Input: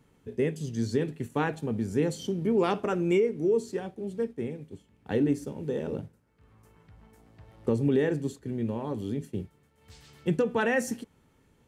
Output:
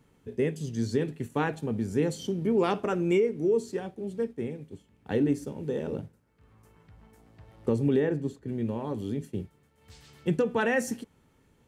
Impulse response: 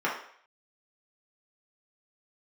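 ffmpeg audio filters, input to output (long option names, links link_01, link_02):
-filter_complex "[0:a]asplit=3[link_01][link_02][link_03];[link_01]afade=type=out:start_time=7.98:duration=0.02[link_04];[link_02]highshelf=frequency=3200:gain=-10.5,afade=type=in:start_time=7.98:duration=0.02,afade=type=out:start_time=8.47:duration=0.02[link_05];[link_03]afade=type=in:start_time=8.47:duration=0.02[link_06];[link_04][link_05][link_06]amix=inputs=3:normalize=0"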